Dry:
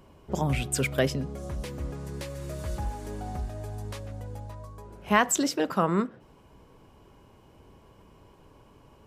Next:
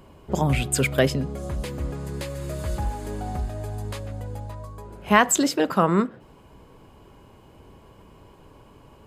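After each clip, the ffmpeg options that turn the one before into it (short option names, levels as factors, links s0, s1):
-af "bandreject=f=5700:w=9.2,volume=1.78"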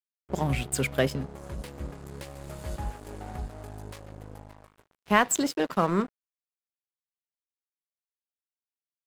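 -af "aeval=exprs='sgn(val(0))*max(abs(val(0))-0.02,0)':c=same,volume=0.631"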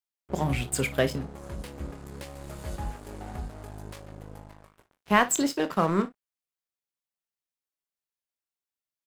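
-af "aecho=1:1:25|57:0.282|0.133"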